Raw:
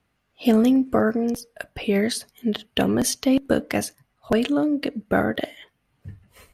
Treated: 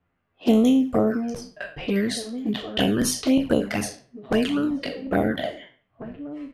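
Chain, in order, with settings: spectral trails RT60 0.43 s; outdoor echo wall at 290 m, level -13 dB; low-pass opened by the level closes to 2000 Hz, open at -16.5 dBFS; envelope flanger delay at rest 11.6 ms, full sweep at -14 dBFS

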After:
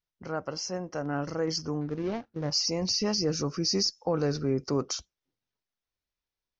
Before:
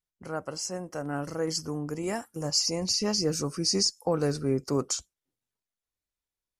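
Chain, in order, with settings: 1.81–2.51 median filter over 41 samples; steep low-pass 6200 Hz 72 dB/oct; in parallel at +1 dB: limiter -23 dBFS, peak gain reduction 8 dB; on the sum: gain -5 dB

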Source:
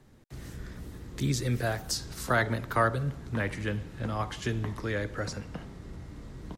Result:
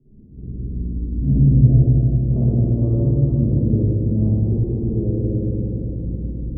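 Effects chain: inverse Chebyshev low-pass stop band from 1600 Hz, stop band 70 dB; 1.11–1.56 comb 1.2 ms, depth 69%; soft clip -14.5 dBFS, distortion -29 dB; reverb RT60 4.2 s, pre-delay 51 ms, DRR -15.5 dB

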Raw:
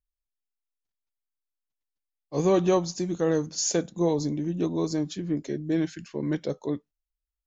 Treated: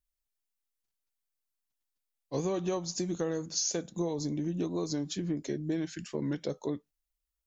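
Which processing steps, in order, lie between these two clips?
high shelf 4800 Hz +6 dB; compressor, threshold -29 dBFS, peak gain reduction 11.5 dB; record warp 45 rpm, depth 100 cents

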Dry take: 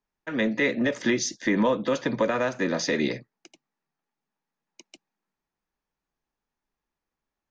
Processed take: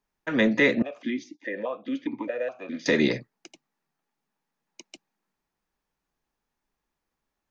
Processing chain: 0.82–2.86 vowel sequencer 4.8 Hz; gain +3.5 dB

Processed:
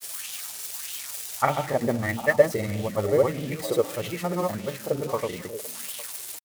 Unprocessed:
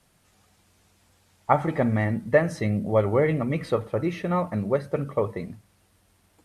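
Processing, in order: switching spikes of -20.5 dBFS; on a send: delay with a stepping band-pass 0.359 s, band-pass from 310 Hz, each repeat 1.4 oct, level -9 dB; on the sum: grains; LFO bell 1.6 Hz 370–3200 Hz +10 dB; gain -4.5 dB

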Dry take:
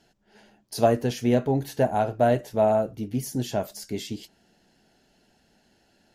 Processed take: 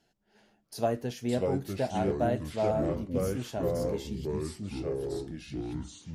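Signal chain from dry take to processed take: echoes that change speed 0.375 s, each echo -4 st, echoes 3; gain -8.5 dB

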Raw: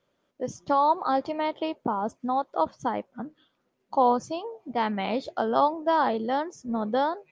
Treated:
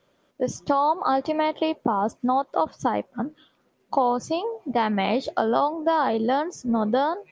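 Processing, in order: compressor 4:1, threshold -27 dBFS, peak gain reduction 9.5 dB; gain +8 dB

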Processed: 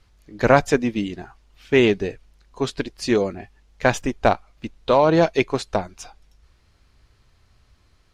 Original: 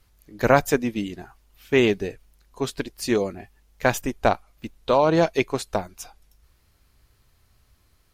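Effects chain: LPF 6200 Hz 12 dB/oct; in parallel at -12 dB: soft clip -20 dBFS, distortion -7 dB; on the sum: gain +1.5 dB

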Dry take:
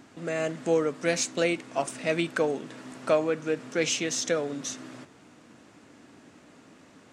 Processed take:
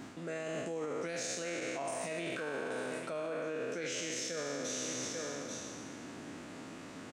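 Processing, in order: spectral trails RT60 1.67 s; echo 0.838 s -17.5 dB; limiter -21 dBFS, peak gain reduction 11.5 dB; reverse; compressor 6:1, threshold -39 dBFS, peak gain reduction 13 dB; reverse; gain +3 dB

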